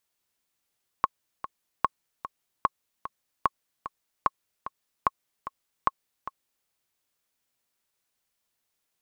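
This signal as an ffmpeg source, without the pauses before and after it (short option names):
-f lavfi -i "aevalsrc='pow(10,(-7.5-13*gte(mod(t,2*60/149),60/149))/20)*sin(2*PI*1090*mod(t,60/149))*exp(-6.91*mod(t,60/149)/0.03)':d=5.63:s=44100"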